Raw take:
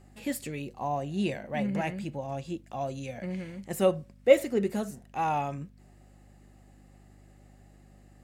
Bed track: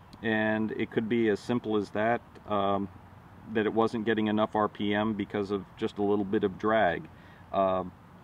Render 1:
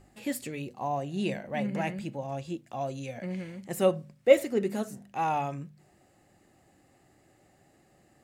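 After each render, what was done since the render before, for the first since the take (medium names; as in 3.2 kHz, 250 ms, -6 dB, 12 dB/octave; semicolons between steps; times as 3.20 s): de-hum 50 Hz, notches 5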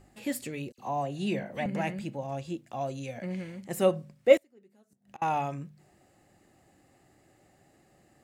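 0.72–1.66 s: phase dispersion lows, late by 61 ms, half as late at 2.5 kHz; 4.37–5.22 s: inverted gate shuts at -33 dBFS, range -31 dB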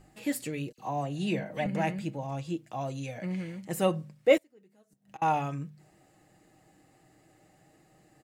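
comb 6.4 ms, depth 46%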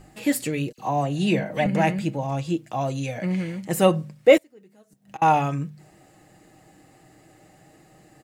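trim +8.5 dB; peak limiter -3 dBFS, peak gain reduction 2.5 dB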